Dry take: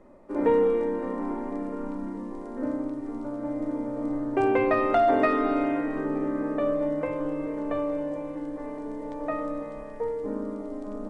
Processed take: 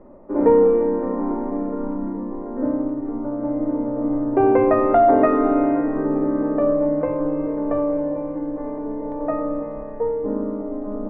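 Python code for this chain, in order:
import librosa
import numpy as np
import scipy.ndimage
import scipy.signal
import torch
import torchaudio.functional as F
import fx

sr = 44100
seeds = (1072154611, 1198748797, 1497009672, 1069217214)

y = scipy.signal.sosfilt(scipy.signal.butter(2, 1100.0, 'lowpass', fs=sr, output='sos'), x)
y = y * 10.0 ** (7.5 / 20.0)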